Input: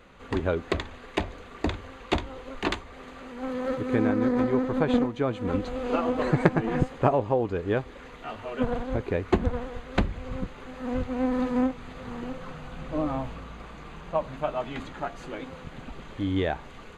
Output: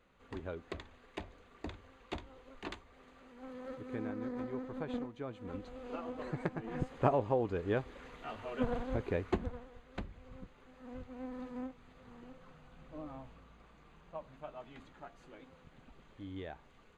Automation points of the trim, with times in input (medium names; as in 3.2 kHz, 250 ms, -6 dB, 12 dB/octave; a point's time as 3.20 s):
6.62 s -16 dB
7.06 s -7 dB
9.19 s -7 dB
9.65 s -18 dB